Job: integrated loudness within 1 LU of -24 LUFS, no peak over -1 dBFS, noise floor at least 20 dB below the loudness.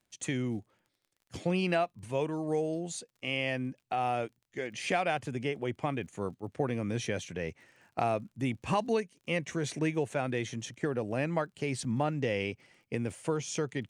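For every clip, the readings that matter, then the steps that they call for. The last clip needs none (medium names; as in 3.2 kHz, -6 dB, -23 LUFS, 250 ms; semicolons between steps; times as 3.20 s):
tick rate 29 per s; loudness -33.5 LUFS; peak level -16.5 dBFS; loudness target -24.0 LUFS
-> de-click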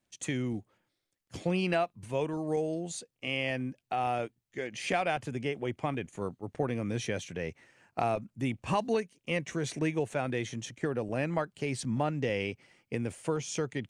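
tick rate 0.14 per s; loudness -33.5 LUFS; peak level -16.5 dBFS; loudness target -24.0 LUFS
-> trim +9.5 dB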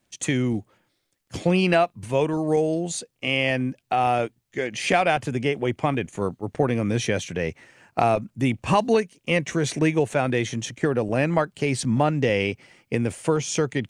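loudness -24.0 LUFS; peak level -7.0 dBFS; noise floor -73 dBFS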